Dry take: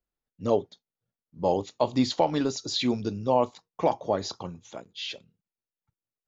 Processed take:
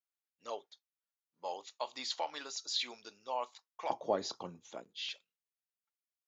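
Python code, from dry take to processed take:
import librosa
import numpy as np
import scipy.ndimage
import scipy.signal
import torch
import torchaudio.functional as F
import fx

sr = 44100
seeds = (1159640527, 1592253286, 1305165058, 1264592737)

y = fx.highpass(x, sr, hz=fx.steps((0.0, 1100.0), (3.9, 220.0), (5.09, 1400.0)), slope=12)
y = y * 10.0 ** (-5.5 / 20.0)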